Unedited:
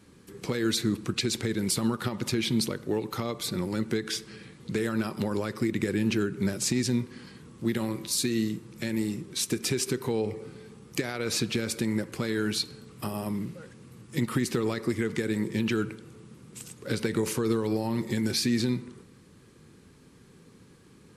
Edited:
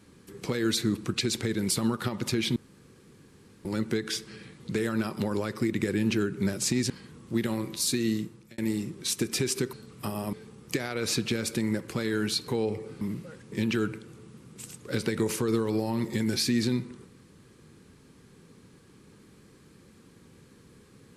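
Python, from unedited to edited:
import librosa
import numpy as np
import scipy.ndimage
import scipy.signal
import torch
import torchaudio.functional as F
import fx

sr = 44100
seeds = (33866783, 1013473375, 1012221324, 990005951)

y = fx.edit(x, sr, fx.room_tone_fill(start_s=2.56, length_s=1.09),
    fx.cut(start_s=6.9, length_s=0.31),
    fx.fade_out_span(start_s=8.51, length_s=0.38),
    fx.swap(start_s=10.04, length_s=0.53, other_s=12.72, other_length_s=0.6),
    fx.cut(start_s=13.83, length_s=1.66), tone=tone)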